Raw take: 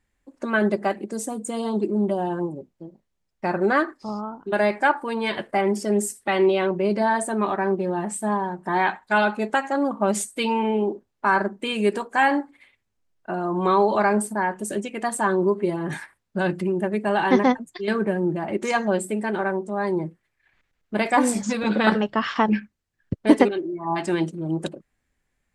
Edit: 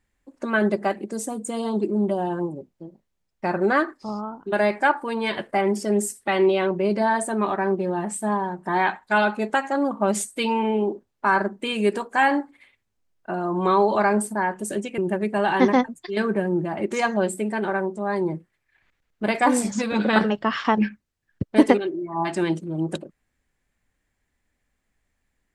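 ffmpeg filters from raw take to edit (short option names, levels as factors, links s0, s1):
-filter_complex "[0:a]asplit=2[s0][s1];[s0]atrim=end=14.982[s2];[s1]atrim=start=16.688[s3];[s2][s3]acrossfade=d=0.004:c1=hsin:c2=hsin"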